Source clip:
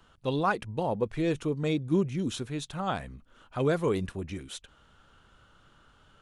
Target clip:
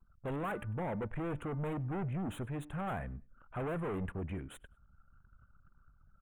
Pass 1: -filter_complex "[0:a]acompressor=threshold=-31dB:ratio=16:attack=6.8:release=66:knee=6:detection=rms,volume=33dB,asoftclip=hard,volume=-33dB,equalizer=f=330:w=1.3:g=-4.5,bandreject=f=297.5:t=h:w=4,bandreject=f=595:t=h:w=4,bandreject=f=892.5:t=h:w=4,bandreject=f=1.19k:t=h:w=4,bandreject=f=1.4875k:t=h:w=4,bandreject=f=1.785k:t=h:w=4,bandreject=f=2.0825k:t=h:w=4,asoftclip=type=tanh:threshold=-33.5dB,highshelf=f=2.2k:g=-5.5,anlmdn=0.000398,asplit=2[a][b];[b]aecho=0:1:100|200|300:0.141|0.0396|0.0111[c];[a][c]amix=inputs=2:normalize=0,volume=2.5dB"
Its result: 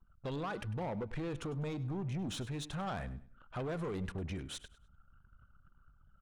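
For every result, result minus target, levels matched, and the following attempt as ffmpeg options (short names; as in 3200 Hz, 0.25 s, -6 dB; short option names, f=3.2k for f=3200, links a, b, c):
compressor: peak gain reduction +12 dB; 4000 Hz band +11.5 dB; echo-to-direct +9.5 dB
-filter_complex "[0:a]volume=33dB,asoftclip=hard,volume=-33dB,equalizer=f=330:w=1.3:g=-4.5,bandreject=f=297.5:t=h:w=4,bandreject=f=595:t=h:w=4,bandreject=f=892.5:t=h:w=4,bandreject=f=1.19k:t=h:w=4,bandreject=f=1.4875k:t=h:w=4,bandreject=f=1.785k:t=h:w=4,bandreject=f=2.0825k:t=h:w=4,asoftclip=type=tanh:threshold=-33.5dB,highshelf=f=2.2k:g=-5.5,anlmdn=0.000398,asplit=2[a][b];[b]aecho=0:1:100|200|300:0.141|0.0396|0.0111[c];[a][c]amix=inputs=2:normalize=0,volume=2.5dB"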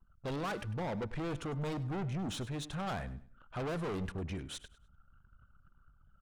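4000 Hz band +11.5 dB; echo-to-direct +9.5 dB
-filter_complex "[0:a]volume=33dB,asoftclip=hard,volume=-33dB,equalizer=f=330:w=1.3:g=-4.5,bandreject=f=297.5:t=h:w=4,bandreject=f=595:t=h:w=4,bandreject=f=892.5:t=h:w=4,bandreject=f=1.19k:t=h:w=4,bandreject=f=1.4875k:t=h:w=4,bandreject=f=1.785k:t=h:w=4,bandreject=f=2.0825k:t=h:w=4,asoftclip=type=tanh:threshold=-33.5dB,asuperstop=centerf=5000:order=4:qfactor=0.7,highshelf=f=2.2k:g=-5.5,anlmdn=0.000398,asplit=2[a][b];[b]aecho=0:1:100|200|300:0.141|0.0396|0.0111[c];[a][c]amix=inputs=2:normalize=0,volume=2.5dB"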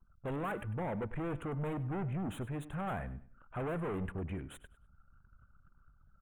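echo-to-direct +9.5 dB
-filter_complex "[0:a]volume=33dB,asoftclip=hard,volume=-33dB,equalizer=f=330:w=1.3:g=-4.5,bandreject=f=297.5:t=h:w=4,bandreject=f=595:t=h:w=4,bandreject=f=892.5:t=h:w=4,bandreject=f=1.19k:t=h:w=4,bandreject=f=1.4875k:t=h:w=4,bandreject=f=1.785k:t=h:w=4,bandreject=f=2.0825k:t=h:w=4,asoftclip=type=tanh:threshold=-33.5dB,asuperstop=centerf=5000:order=4:qfactor=0.7,highshelf=f=2.2k:g=-5.5,anlmdn=0.000398,asplit=2[a][b];[b]aecho=0:1:100|200:0.0473|0.0132[c];[a][c]amix=inputs=2:normalize=0,volume=2.5dB"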